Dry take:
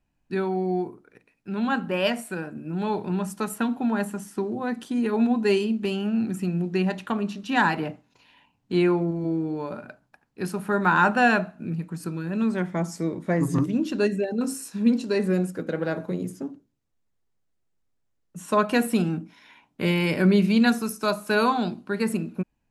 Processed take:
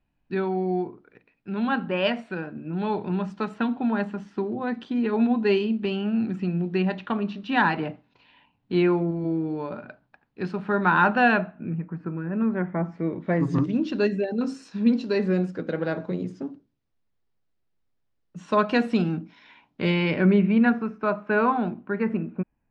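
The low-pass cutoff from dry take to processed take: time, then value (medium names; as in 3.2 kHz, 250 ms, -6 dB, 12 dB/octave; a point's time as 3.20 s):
low-pass 24 dB/octave
11.25 s 4.1 kHz
11.88 s 2 kHz
12.79 s 2 kHz
13.53 s 5 kHz
19.90 s 5 kHz
20.45 s 2.3 kHz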